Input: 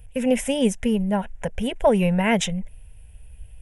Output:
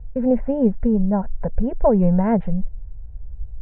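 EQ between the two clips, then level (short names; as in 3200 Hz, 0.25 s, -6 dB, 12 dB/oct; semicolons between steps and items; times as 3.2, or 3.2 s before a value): inverse Chebyshev low-pass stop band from 7500 Hz, stop band 80 dB; tilt -3 dB/oct; low shelf 410 Hz -4 dB; 0.0 dB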